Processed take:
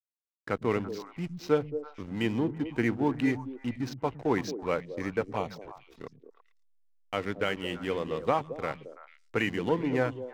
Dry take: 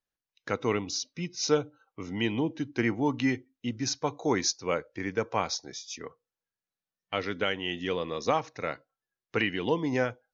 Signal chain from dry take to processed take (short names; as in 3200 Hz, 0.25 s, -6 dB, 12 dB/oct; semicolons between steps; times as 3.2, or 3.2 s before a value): LPF 2900 Hz 12 dB/oct; backlash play -36 dBFS; 5.21–5.99 envelope flanger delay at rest 5.5 ms, full sweep at -26 dBFS; delay with a stepping band-pass 0.111 s, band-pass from 150 Hz, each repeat 1.4 oct, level -5.5 dB